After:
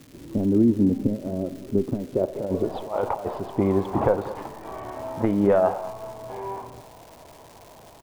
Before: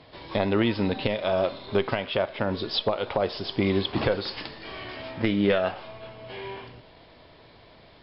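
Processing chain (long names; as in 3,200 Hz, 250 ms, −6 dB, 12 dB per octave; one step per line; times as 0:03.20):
low-pass filter sweep 280 Hz → 910 Hz, 0:01.93–0:02.91
0:02.21–0:03.40: compressor whose output falls as the input rises −26 dBFS, ratio −0.5
surface crackle 520 per second −40 dBFS
single-tap delay 203 ms −16 dB
level +1.5 dB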